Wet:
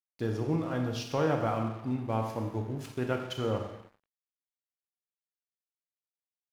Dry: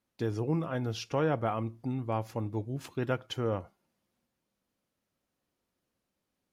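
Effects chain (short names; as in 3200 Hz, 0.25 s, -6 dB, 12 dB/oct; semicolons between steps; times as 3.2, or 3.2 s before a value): Schroeder reverb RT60 1 s, combs from 28 ms, DRR 3 dB; crossover distortion -50 dBFS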